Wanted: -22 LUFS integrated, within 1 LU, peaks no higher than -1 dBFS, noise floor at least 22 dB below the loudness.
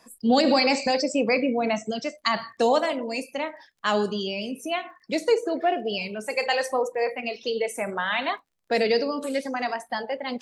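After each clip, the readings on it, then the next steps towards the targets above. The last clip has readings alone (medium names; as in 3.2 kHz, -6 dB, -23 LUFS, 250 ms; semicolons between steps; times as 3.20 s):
tick rate 25 per s; loudness -25.5 LUFS; peak level -8.5 dBFS; loudness target -22.0 LUFS
-> de-click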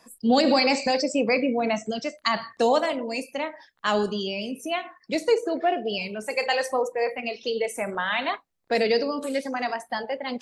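tick rate 0.29 per s; loudness -25.5 LUFS; peak level -8.5 dBFS; loudness target -22.0 LUFS
-> trim +3.5 dB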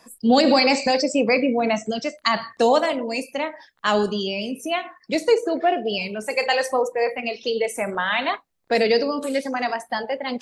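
loudness -22.0 LUFS; peak level -5.0 dBFS; noise floor -61 dBFS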